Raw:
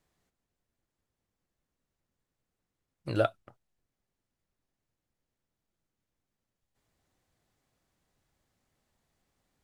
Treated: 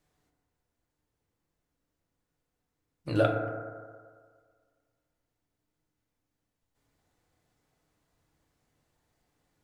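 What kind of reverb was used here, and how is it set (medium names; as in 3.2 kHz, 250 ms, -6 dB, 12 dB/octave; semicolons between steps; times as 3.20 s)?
FDN reverb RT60 1.8 s, low-frequency decay 0.8×, high-frequency decay 0.25×, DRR 1 dB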